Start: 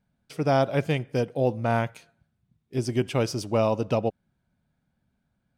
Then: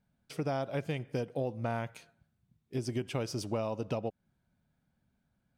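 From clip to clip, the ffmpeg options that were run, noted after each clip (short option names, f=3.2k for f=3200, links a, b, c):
-af "acompressor=threshold=-28dB:ratio=6,volume=-2.5dB"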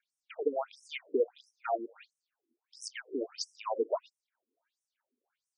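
-af "aphaser=in_gain=1:out_gain=1:delay=3.3:decay=0.62:speed=1.4:type=triangular,afftfilt=real='re*between(b*sr/1024,330*pow(7600/330,0.5+0.5*sin(2*PI*1.5*pts/sr))/1.41,330*pow(7600/330,0.5+0.5*sin(2*PI*1.5*pts/sr))*1.41)':imag='im*between(b*sr/1024,330*pow(7600/330,0.5+0.5*sin(2*PI*1.5*pts/sr))/1.41,330*pow(7600/330,0.5+0.5*sin(2*PI*1.5*pts/sr))*1.41)':win_size=1024:overlap=0.75,volume=5dB"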